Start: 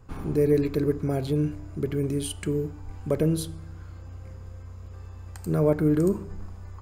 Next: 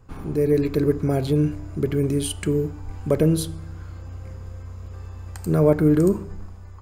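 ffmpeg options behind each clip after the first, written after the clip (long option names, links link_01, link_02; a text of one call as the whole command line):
ffmpeg -i in.wav -af "dynaudnorm=framelen=110:gausssize=11:maxgain=5dB" out.wav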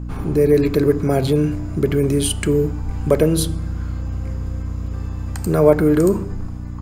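ffmpeg -i in.wav -filter_complex "[0:a]acrossover=split=380|1400[link_01][link_02][link_03];[link_01]alimiter=limit=-21.5dB:level=0:latency=1[link_04];[link_04][link_02][link_03]amix=inputs=3:normalize=0,aeval=exprs='val(0)+0.02*(sin(2*PI*60*n/s)+sin(2*PI*2*60*n/s)/2+sin(2*PI*3*60*n/s)/3+sin(2*PI*4*60*n/s)/4+sin(2*PI*5*60*n/s)/5)':channel_layout=same,volume=7dB" out.wav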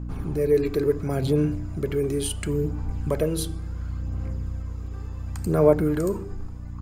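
ffmpeg -i in.wav -af "aphaser=in_gain=1:out_gain=1:delay=2.6:decay=0.38:speed=0.71:type=sinusoidal,volume=-8.5dB" out.wav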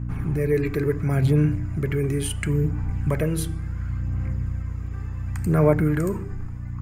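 ffmpeg -i in.wav -af "equalizer=frequency=125:width_type=o:width=1:gain=8,equalizer=frequency=500:width_type=o:width=1:gain=-4,equalizer=frequency=2000:width_type=o:width=1:gain=10,equalizer=frequency=4000:width_type=o:width=1:gain=-7" out.wav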